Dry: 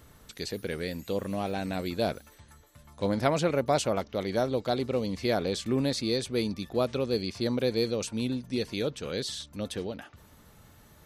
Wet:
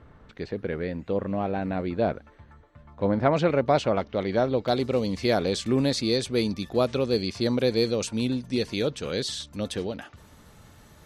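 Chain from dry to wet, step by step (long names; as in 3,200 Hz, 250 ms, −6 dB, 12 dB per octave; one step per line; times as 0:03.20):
low-pass filter 1,800 Hz 12 dB per octave, from 0:03.33 3,300 Hz, from 0:04.68 10,000 Hz
level +4 dB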